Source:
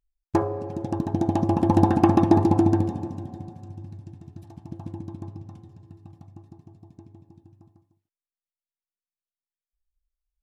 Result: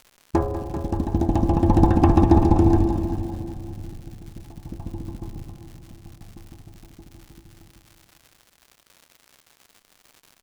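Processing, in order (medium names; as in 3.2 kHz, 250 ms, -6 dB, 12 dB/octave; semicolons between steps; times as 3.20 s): octave divider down 2 oct, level +1 dB; crackle 170 per s -37 dBFS; multi-head delay 195 ms, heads first and second, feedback 41%, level -13.5 dB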